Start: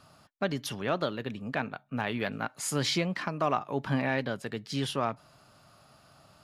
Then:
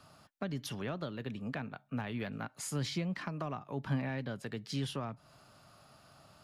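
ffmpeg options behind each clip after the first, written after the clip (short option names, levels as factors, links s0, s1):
-filter_complex "[0:a]acrossover=split=220[s0][s1];[s1]acompressor=threshold=0.0126:ratio=4[s2];[s0][s2]amix=inputs=2:normalize=0,volume=0.841"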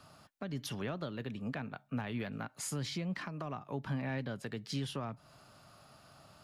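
-af "alimiter=level_in=1.78:limit=0.0631:level=0:latency=1:release=202,volume=0.562,volume=1.12"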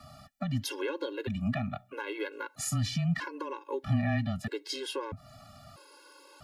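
-af "afreqshift=-17,afftfilt=real='re*gt(sin(2*PI*0.78*pts/sr)*(1-2*mod(floor(b*sr/1024/280),2)),0)':imag='im*gt(sin(2*PI*0.78*pts/sr)*(1-2*mod(floor(b*sr/1024/280),2)),0)':win_size=1024:overlap=0.75,volume=2.82"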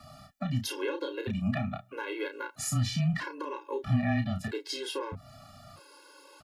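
-filter_complex "[0:a]asplit=2[s0][s1];[s1]adelay=32,volume=0.473[s2];[s0][s2]amix=inputs=2:normalize=0"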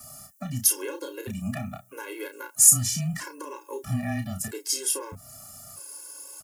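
-af "aexciter=amount=15.2:drive=3.9:freq=5900,volume=0.841"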